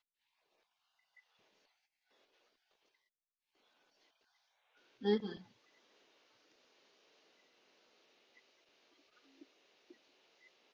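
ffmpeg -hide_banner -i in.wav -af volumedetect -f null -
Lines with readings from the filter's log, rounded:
mean_volume: -49.1 dB
max_volume: -20.8 dB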